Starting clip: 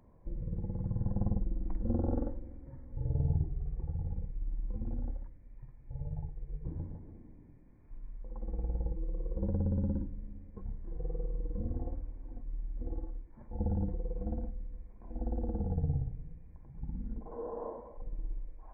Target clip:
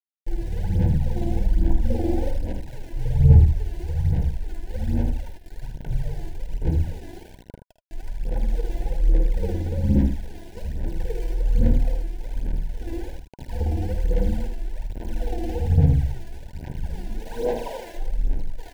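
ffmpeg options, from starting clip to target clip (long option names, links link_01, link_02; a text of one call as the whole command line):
ffmpeg -i in.wav -filter_complex "[0:a]bandreject=frequency=50:width_type=h:width=6,bandreject=frequency=100:width_type=h:width=6,bandreject=frequency=150:width_type=h:width=6,bandreject=frequency=200:width_type=h:width=6,bandreject=frequency=250:width_type=h:width=6,bandreject=frequency=300:width_type=h:width=6,asplit=2[link_01][link_02];[link_02]acompressor=threshold=-47dB:ratio=4,volume=-2.5dB[link_03];[link_01][link_03]amix=inputs=2:normalize=0,flanger=delay=7:depth=8.9:regen=-12:speed=0.34:shape=triangular,aeval=exprs='val(0)*gte(abs(val(0)),0.00447)':channel_layout=same,aphaser=in_gain=1:out_gain=1:delay=3:decay=0.72:speed=1.2:type=sinusoidal,asuperstop=centerf=1200:order=20:qfactor=2.6,asplit=2[link_04][link_05];[link_05]aecho=0:1:51|78:0.251|0.422[link_06];[link_04][link_06]amix=inputs=2:normalize=0,volume=8.5dB" out.wav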